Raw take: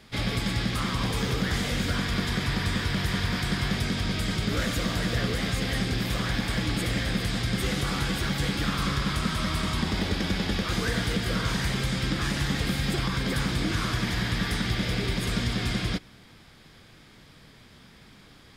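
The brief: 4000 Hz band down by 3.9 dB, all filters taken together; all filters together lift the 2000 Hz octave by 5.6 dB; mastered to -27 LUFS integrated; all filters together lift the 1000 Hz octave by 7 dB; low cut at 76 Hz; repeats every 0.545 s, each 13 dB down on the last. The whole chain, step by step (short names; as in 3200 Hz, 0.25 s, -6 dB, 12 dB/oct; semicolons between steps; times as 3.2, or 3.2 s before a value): HPF 76 Hz; bell 1000 Hz +7.5 dB; bell 2000 Hz +6 dB; bell 4000 Hz -7.5 dB; feedback echo 0.545 s, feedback 22%, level -13 dB; gain -1 dB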